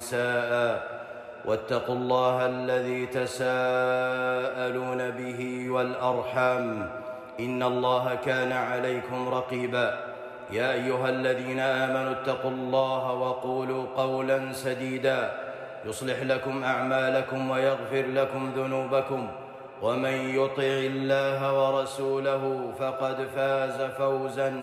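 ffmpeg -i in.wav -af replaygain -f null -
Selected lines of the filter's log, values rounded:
track_gain = +8.5 dB
track_peak = 0.157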